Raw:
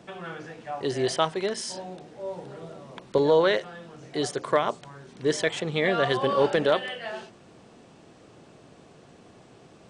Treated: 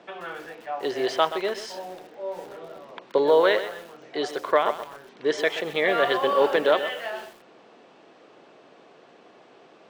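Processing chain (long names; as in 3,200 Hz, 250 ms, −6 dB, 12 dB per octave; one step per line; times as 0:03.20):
band-pass filter 380–3,800 Hz
feedback echo at a low word length 127 ms, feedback 35%, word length 7 bits, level −11.5 dB
level +3 dB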